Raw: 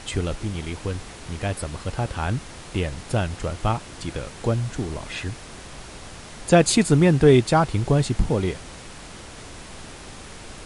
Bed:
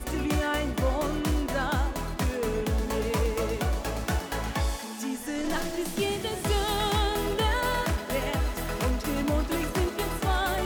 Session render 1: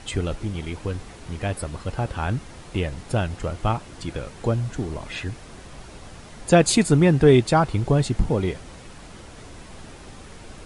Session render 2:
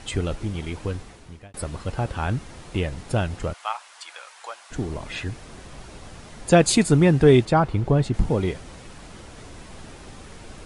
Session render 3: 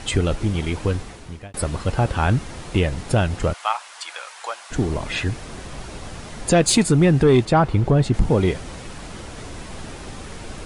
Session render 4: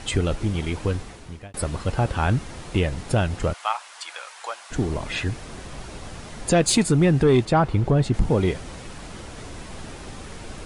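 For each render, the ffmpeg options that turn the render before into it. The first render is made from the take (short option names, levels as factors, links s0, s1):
-af "afftdn=nr=6:nf=-41"
-filter_complex "[0:a]asplit=3[s0][s1][s2];[s0]afade=t=out:st=3.52:d=0.02[s3];[s1]highpass=f=840:w=0.5412,highpass=f=840:w=1.3066,afade=t=in:st=3.52:d=0.02,afade=t=out:st=4.7:d=0.02[s4];[s2]afade=t=in:st=4.7:d=0.02[s5];[s3][s4][s5]amix=inputs=3:normalize=0,asettb=1/sr,asplit=3[s6][s7][s8];[s6]atrim=end=7.454[s9];[s7]atrim=start=7.45:end=8.14,asetpts=PTS-STARTPTS,afade=t=in:d=0.004:c=qsin,afade=t=out:st=0.686:d=0.004:c=qsin,highshelf=f=3900:g=-11[s10];[s8]atrim=start=8.136[s11];[s9][s10]acrossfade=d=0.004:c1=hsin:c2=qsin[s12];[s12][s11]acrossfade=d=0.004:c1=qsin:c2=hsin,asplit=2[s13][s14];[s13]atrim=end=1.54,asetpts=PTS-STARTPTS,afade=t=out:st=0.89:d=0.65[s15];[s14]atrim=start=1.54,asetpts=PTS-STARTPTS,afade=t=in:d=0.004:c=hsin[s16];[s15][s16]concat=n=2:v=0:a=1"
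-af "acontrast=75,alimiter=limit=0.422:level=0:latency=1:release=295"
-af "volume=0.75"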